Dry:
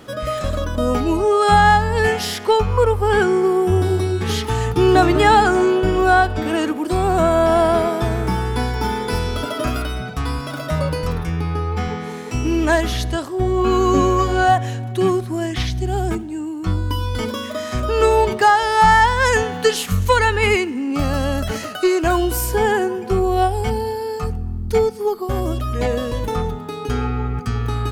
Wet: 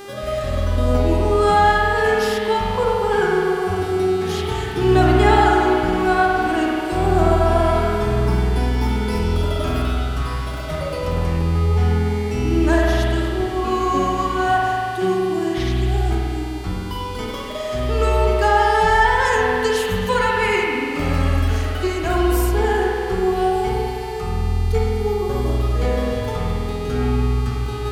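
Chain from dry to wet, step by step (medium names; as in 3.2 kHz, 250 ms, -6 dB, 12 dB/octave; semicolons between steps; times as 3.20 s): mains buzz 400 Hz, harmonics 36, -31 dBFS -6 dB/octave; spring tank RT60 2.5 s, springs 48 ms, chirp 60 ms, DRR -3 dB; trim -6 dB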